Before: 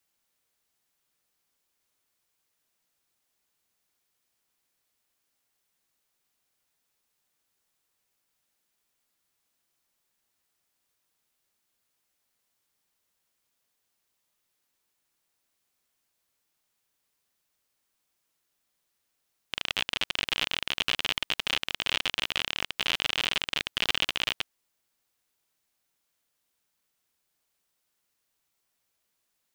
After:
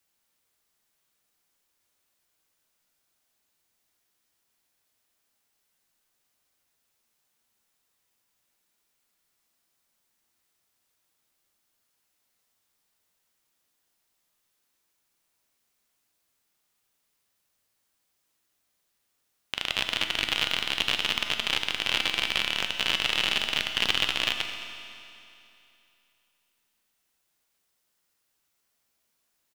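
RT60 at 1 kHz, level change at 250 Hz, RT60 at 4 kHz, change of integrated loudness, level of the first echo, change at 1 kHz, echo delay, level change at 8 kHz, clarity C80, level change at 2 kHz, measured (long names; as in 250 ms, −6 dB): 2.8 s, +3.0 dB, 2.8 s, +2.5 dB, −14.5 dB, +2.5 dB, 217 ms, +2.5 dB, 7.0 dB, +2.5 dB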